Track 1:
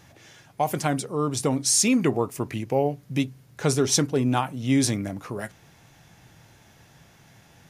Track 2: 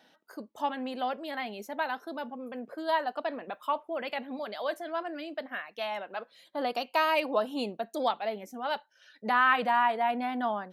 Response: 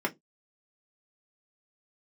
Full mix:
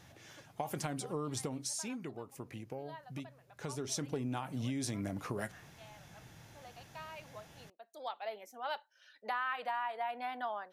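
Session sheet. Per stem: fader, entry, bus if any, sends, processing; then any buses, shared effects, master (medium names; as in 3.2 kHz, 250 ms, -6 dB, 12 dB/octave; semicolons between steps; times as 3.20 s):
1.29 s -5.5 dB -> 2.04 s -14 dB -> 3.56 s -14 dB -> 4.16 s -3 dB, 0.00 s, no send, compression, threshold -26 dBFS, peak gain reduction 9.5 dB
-4.5 dB, 0.00 s, no send, high-pass 530 Hz 12 dB/octave; auto duck -17 dB, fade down 0.80 s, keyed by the first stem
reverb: none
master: compression 6:1, threshold -33 dBFS, peak gain reduction 9 dB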